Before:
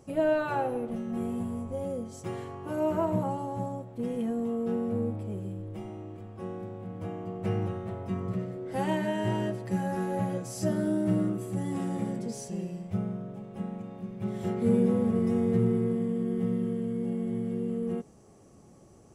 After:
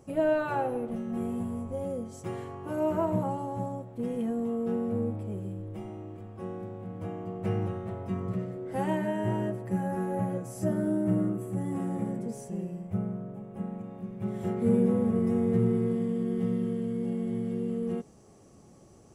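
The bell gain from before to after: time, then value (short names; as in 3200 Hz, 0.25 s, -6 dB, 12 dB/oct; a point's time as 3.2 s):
bell 4400 Hz 1.4 oct
8.5 s -3.5 dB
9.22 s -14 dB
13.46 s -14 dB
14.07 s -7 dB
15.4 s -7 dB
15.96 s +2.5 dB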